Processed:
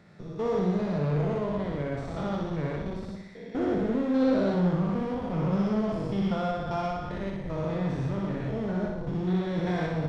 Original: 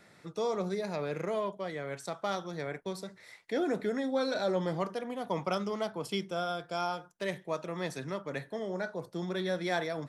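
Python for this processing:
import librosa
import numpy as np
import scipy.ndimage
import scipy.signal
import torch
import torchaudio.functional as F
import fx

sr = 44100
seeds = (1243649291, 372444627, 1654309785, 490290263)

p1 = fx.spec_steps(x, sr, hold_ms=200)
p2 = scipy.signal.sosfilt(scipy.signal.butter(2, 46.0, 'highpass', fs=sr, output='sos'), p1)
p3 = fx.bass_treble(p2, sr, bass_db=8, treble_db=9)
p4 = fx.cheby_harmonics(p3, sr, harmonics=(5, 6), levels_db=(-20, -21), full_scale_db=-20.5)
p5 = fx.schmitt(p4, sr, flips_db=-32.0)
p6 = p4 + (p5 * 10.0 ** (-5.5 / 20.0))
p7 = fx.spacing_loss(p6, sr, db_at_10k=27)
y = p7 + fx.echo_feedback(p7, sr, ms=61, feedback_pct=59, wet_db=-3.5, dry=0)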